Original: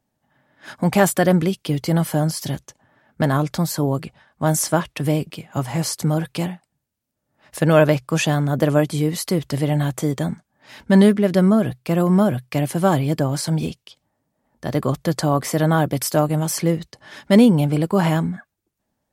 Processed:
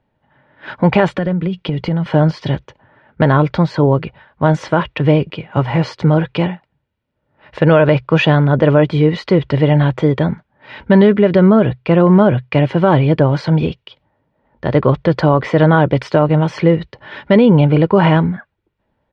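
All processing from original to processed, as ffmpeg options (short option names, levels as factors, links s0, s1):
-filter_complex "[0:a]asettb=1/sr,asplit=3[s0][s1][s2];[s0]atrim=end=1.134[s3];[s1]atrim=start=1.13:end=2.06,asetpts=PTS-STARTPTS,afade=t=in:d=0.004:c=qsin,afade=t=out:st=0.926:d=0.004:c=qsin,equalizer=f=180:t=o:w=0.34:g=10,acompressor=threshold=0.0891:ratio=12:attack=3.2:release=140:knee=1:detection=peak[s4];[s2]atrim=start=2.056[s5];[s3][s4]acrossfade=d=0.004:c1=hsin:c2=qsin[s6];[s6][s5]acrossfade=d=0.004:c1=qsin:c2=hsin,lowpass=f=3200:w=0.5412,lowpass=f=3200:w=1.3066,aecho=1:1:2.1:0.33,alimiter=level_in=2.99:limit=0.891:release=50:level=0:latency=1,volume=0.891"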